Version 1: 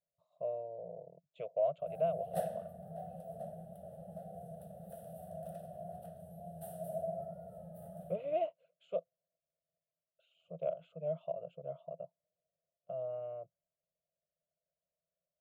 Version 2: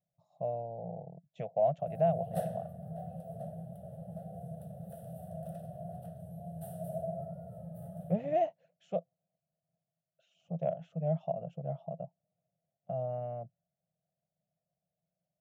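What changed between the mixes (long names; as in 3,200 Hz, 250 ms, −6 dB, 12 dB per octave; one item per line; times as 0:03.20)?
speech: remove phaser with its sweep stopped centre 1,200 Hz, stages 8
master: add parametric band 120 Hz +13.5 dB 0.97 octaves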